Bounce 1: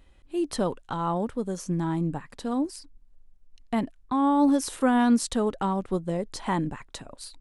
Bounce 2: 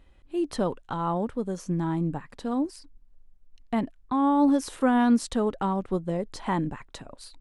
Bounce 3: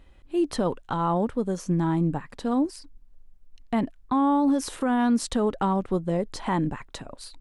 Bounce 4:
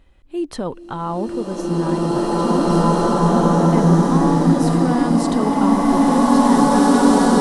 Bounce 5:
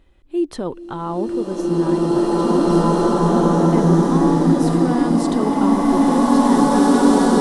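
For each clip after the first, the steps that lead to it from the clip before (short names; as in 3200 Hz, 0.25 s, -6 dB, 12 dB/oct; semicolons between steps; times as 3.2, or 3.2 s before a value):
high shelf 4800 Hz -7.5 dB
limiter -19 dBFS, peak gain reduction 8.5 dB; gain +3.5 dB
bloom reverb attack 2.46 s, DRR -11 dB
small resonant body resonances 350/3500 Hz, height 6 dB, ringing for 25 ms; gain -2 dB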